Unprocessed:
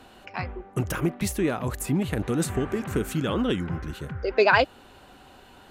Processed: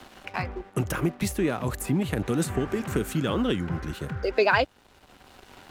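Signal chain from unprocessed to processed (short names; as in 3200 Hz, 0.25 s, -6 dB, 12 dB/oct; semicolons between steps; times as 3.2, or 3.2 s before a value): crossover distortion -50.5 dBFS; three-band squash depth 40%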